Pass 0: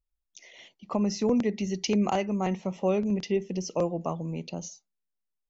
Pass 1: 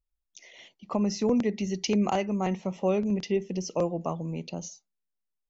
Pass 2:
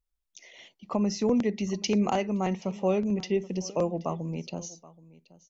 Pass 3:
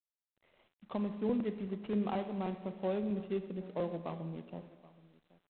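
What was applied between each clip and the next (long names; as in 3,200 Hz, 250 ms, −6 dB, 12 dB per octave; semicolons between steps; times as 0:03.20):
no processing that can be heard
single-tap delay 777 ms −20.5 dB
running median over 25 samples; four-comb reverb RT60 1.5 s, combs from 30 ms, DRR 10 dB; level −8.5 dB; G.726 24 kbit/s 8,000 Hz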